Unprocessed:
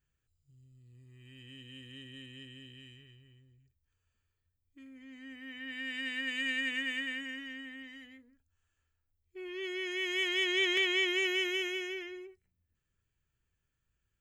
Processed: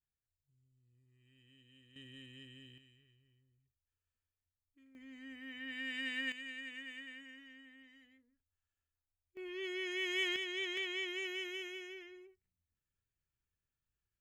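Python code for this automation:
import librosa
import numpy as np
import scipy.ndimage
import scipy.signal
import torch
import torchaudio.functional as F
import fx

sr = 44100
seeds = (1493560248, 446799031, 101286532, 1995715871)

y = fx.gain(x, sr, db=fx.steps((0.0, -15.0), (1.96, -5.0), (2.78, -13.0), (4.95, -2.5), (6.32, -13.0), (9.37, -3.0), (10.36, -10.0)))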